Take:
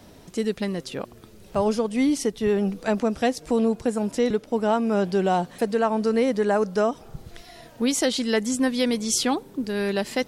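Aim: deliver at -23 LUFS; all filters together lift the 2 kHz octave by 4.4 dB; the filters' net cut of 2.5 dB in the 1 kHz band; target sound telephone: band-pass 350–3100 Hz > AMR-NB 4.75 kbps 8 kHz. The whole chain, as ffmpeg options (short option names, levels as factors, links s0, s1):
-af "highpass=350,lowpass=3100,equalizer=f=1000:t=o:g=-5,equalizer=f=2000:t=o:g=7.5,volume=1.78" -ar 8000 -c:a libopencore_amrnb -b:a 4750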